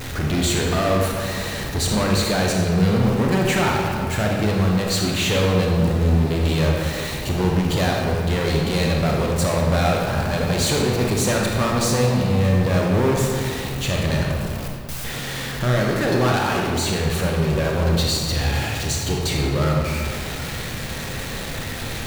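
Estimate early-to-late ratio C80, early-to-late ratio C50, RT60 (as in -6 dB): 2.5 dB, 0.5 dB, 2.2 s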